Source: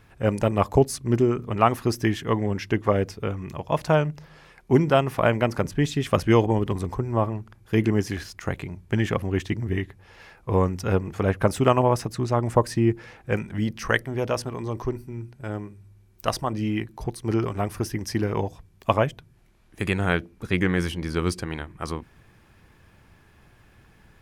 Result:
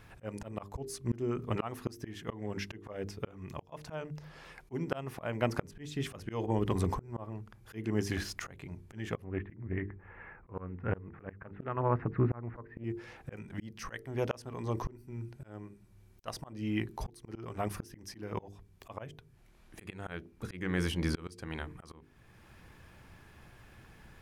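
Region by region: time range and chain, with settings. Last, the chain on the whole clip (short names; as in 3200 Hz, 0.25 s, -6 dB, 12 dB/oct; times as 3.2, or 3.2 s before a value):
9.24–12.84 steep low-pass 2100 Hz + bell 630 Hz -5.5 dB 0.78 oct + Doppler distortion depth 0.25 ms
whole clip: notches 50/100/150/200/250/300/350/400/450 Hz; auto swell 0.6 s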